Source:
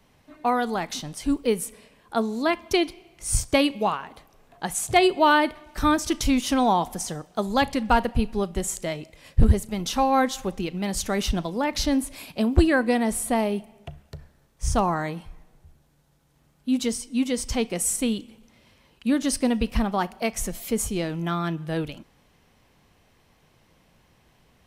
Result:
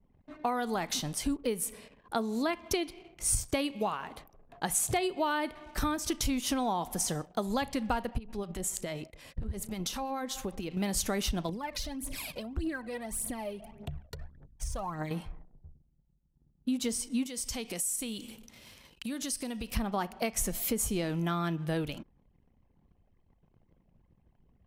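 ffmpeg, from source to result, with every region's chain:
ffmpeg -i in.wav -filter_complex "[0:a]asettb=1/sr,asplit=3[link_01][link_02][link_03];[link_01]atrim=end=8.184[link_04];[link_02]atrim=start=8.18:end=10.77,asetpts=PTS-STARTPTS,afade=type=in:duration=0.004:curve=qsin,afade=type=out:start_time=2.586:duration=0.004:curve=qsin,acompressor=threshold=-30dB:ratio=6:attack=3.2:release=140:knee=1:detection=peak,acrossover=split=910[link_05][link_06];[link_05]aeval=exprs='val(0)*(1-0.5/2+0.5/2*cos(2*PI*9.2*n/s))':channel_layout=same[link_07];[link_06]aeval=exprs='val(0)*(1-0.5/2-0.5/2*cos(2*PI*9.2*n/s))':channel_layout=same[link_08];[link_07][link_08]amix=inputs=2:normalize=0[link_09];[link_03]atrim=start=10.766[link_10];[link_04][link_09]acrossfade=duration=0.004:curve1=hsin:curve2=qsin[link_11];[link_11][link_10]acrossfade=duration=0.004:curve1=qsin:curve2=hsin,asettb=1/sr,asplit=3[link_12][link_13][link_14];[link_12]atrim=end=11.494[link_15];[link_13]atrim=start=11.49:end=15.11,asetpts=PTS-STARTPTS,afade=type=in:duration=0.004:curve=qsin,afade=type=out:start_time=3.616:duration=0.004:curve=qsin,acompressor=threshold=-39dB:ratio=4:attack=3.2:release=140:knee=1:detection=peak,aphaser=in_gain=1:out_gain=1:delay=2.1:decay=0.65:speed=1.7:type=triangular,aeval=exprs='val(0)+0.000794*(sin(2*PI*50*n/s)+sin(2*PI*2*50*n/s)/2+sin(2*PI*3*50*n/s)/3+sin(2*PI*4*50*n/s)/4+sin(2*PI*5*50*n/s)/5)':channel_layout=same[link_16];[link_14]atrim=start=15.106[link_17];[link_15][link_16]acrossfade=duration=0.004:curve1=hsin:curve2=qsin[link_18];[link_18][link_17]acrossfade=duration=0.004:curve1=qsin:curve2=hsin,asettb=1/sr,asplit=3[link_19][link_20][link_21];[link_19]atrim=end=17.264[link_22];[link_20]atrim=start=17.26:end=19.77,asetpts=PTS-STARTPTS,afade=type=in:duration=0.004:curve=qsin,afade=type=out:start_time=2.506:duration=0.004:curve=qsin,highshelf=frequency=2500:gain=10,acompressor=threshold=-35dB:ratio=5:attack=3.2:release=140:knee=1:detection=peak[link_23];[link_21]atrim=start=19.766[link_24];[link_22][link_23]acrossfade=duration=0.004:curve1=hsin:curve2=qsin[link_25];[link_25][link_24]acrossfade=duration=0.004:curve1=qsin:curve2=hsin,acompressor=threshold=-28dB:ratio=6,anlmdn=0.000398,highshelf=frequency=11000:gain=8.5" out.wav

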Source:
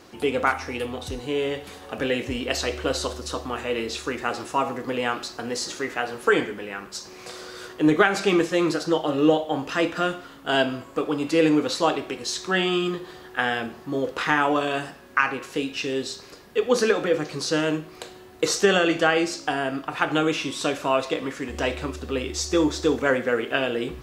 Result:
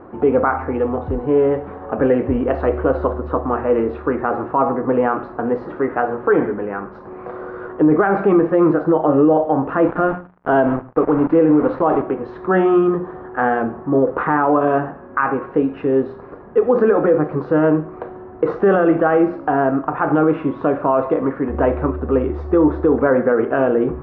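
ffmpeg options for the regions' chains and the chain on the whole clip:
ffmpeg -i in.wav -filter_complex "[0:a]asettb=1/sr,asplit=3[link_01][link_02][link_03];[link_01]atrim=end=9.844[link_04];[link_02]atrim=start=9.84:end=12.02,asetpts=PTS-STARTPTS,afade=type=in:duration=0.004:curve=qsin,afade=type=out:start_time=2.176:duration=0.004:curve=qsin,acompressor=mode=upward:threshold=-33dB:ratio=2.5:attack=3.2:release=140:knee=2.83:detection=peak,acrusher=bits=4:mix=0:aa=0.5,aecho=1:1:112:0.106,atrim=end_sample=96138[link_05];[link_03]atrim=start=12.016[link_06];[link_04][link_05]acrossfade=duration=0.004:curve1=hsin:curve2=qsin[link_07];[link_07][link_06]acrossfade=duration=0.004:curve1=qsin:curve2=hsin,lowpass=frequency=1300:width=0.5412,lowpass=frequency=1300:width=1.3066,bandreject=frequency=60:width_type=h:width=6,bandreject=frequency=120:width_type=h:width=6,bandreject=frequency=180:width_type=h:width=6,alimiter=level_in=16dB:limit=-1dB:release=50:level=0:latency=1,volume=-5dB" out.wav

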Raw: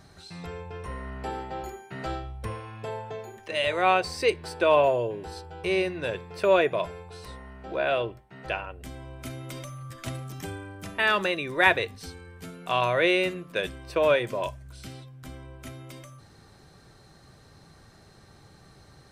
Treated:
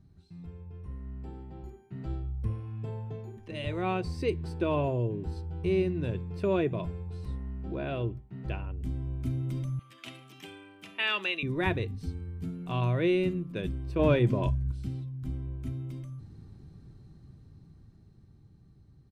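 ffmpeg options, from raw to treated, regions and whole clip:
ffmpeg -i in.wav -filter_complex "[0:a]asettb=1/sr,asplit=3[link_01][link_02][link_03];[link_01]atrim=end=9.794[link_04];[link_02]atrim=start=9.79:end=11.43,asetpts=PTS-STARTPTS,afade=type=in:duration=0.004:curve=qsin,afade=type=out:start_time=1.636:duration=0.004:curve=qsin,highpass=590,equalizer=frequency=2800:width=1.3:gain=13[link_05];[link_03]atrim=start=11.426[link_06];[link_04][link_05]acrossfade=duration=0.004:curve1=hsin:curve2=qsin[link_07];[link_07][link_06]acrossfade=duration=0.004:curve1=qsin:curve2=hsin,asettb=1/sr,asplit=3[link_08][link_09][link_10];[link_08]atrim=end=13.994[link_11];[link_09]atrim=start=13.99:end=14.72,asetpts=PTS-STARTPTS,afade=type=in:duration=0.004:curve=qsin,afade=type=out:start_time=0.726:duration=0.004:curve=qsin,acontrast=53,highshelf=frequency=10000:gain=-9[link_12];[link_10]atrim=start=14.716[link_13];[link_11][link_12]acrossfade=duration=0.004:curve1=hsin:curve2=qsin[link_14];[link_14][link_13]acrossfade=duration=0.004:curve1=qsin:curve2=hsin,firequalizer=gain_entry='entry(100,0);entry(310,-6);entry(540,-21);entry(1000,-20);entry(1600,-24);entry(2500,-21);entry(6600,-24)':delay=0.05:min_phase=1,dynaudnorm=framelen=470:gausssize=11:maxgain=11.5dB,volume=-2dB" out.wav

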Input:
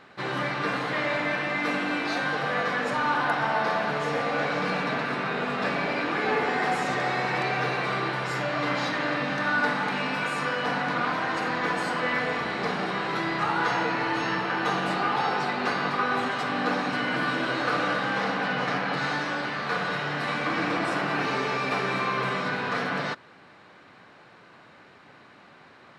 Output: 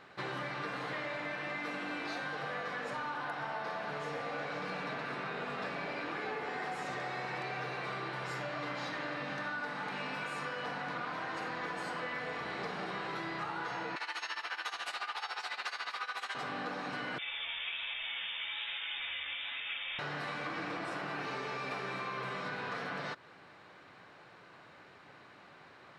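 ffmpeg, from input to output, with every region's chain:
ffmpeg -i in.wav -filter_complex "[0:a]asettb=1/sr,asplit=3[link_01][link_02][link_03];[link_01]atrim=end=13.964[link_04];[link_02]atrim=start=13.96:end=16.35,asetpts=PTS-STARTPTS,afade=type=in:duration=0.004:curve=qsin,afade=type=out:start_time=2.386:duration=0.004:curve=qsin,highpass=810,highshelf=frequency=2000:gain=12,tremolo=f=14:d=0.83[link_05];[link_03]atrim=start=16.346[link_06];[link_04][link_05]acrossfade=duration=0.004:curve1=hsin:curve2=qsin[link_07];[link_07][link_06]acrossfade=duration=0.004:curve1=qsin:curve2=hsin,asettb=1/sr,asplit=3[link_08][link_09][link_10];[link_08]atrim=end=17.184[link_11];[link_09]atrim=start=17.18:end=19.99,asetpts=PTS-STARTPTS,afade=type=in:duration=0.004:curve=qsin,afade=type=out:start_time=2.806:duration=0.004:curve=qsin,lowpass=frequency=3200:width_type=q:width=0.5098,lowpass=frequency=3200:width_type=q:width=0.6013,lowpass=frequency=3200:width_type=q:width=0.9,lowpass=frequency=3200:width_type=q:width=2.563,afreqshift=-3800,flanger=delay=6.1:depth=7.8:regen=37:speed=1.2:shape=sinusoidal[link_12];[link_10]atrim=start=19.986[link_13];[link_11][link_12]acrossfade=duration=0.004:curve1=hsin:curve2=qsin[link_14];[link_14][link_13]acrossfade=duration=0.004:curve1=qsin:curve2=hsin,equalizer=frequency=230:width_type=o:width=0.48:gain=-5,acompressor=threshold=-32dB:ratio=6,volume=-4dB" out.wav

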